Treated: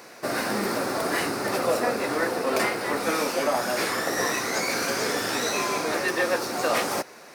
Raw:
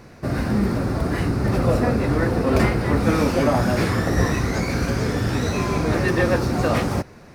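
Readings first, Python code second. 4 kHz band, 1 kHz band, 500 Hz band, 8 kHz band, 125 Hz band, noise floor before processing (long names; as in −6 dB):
+3.5 dB, −0.5 dB, −3.0 dB, +6.0 dB, −21.5 dB, −45 dBFS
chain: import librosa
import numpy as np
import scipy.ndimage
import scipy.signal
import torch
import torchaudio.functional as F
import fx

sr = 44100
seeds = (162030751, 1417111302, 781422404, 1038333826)

y = scipy.signal.sosfilt(scipy.signal.butter(2, 460.0, 'highpass', fs=sr, output='sos'), x)
y = fx.high_shelf(y, sr, hz=5000.0, db=8.5)
y = fx.rider(y, sr, range_db=3, speed_s=0.5)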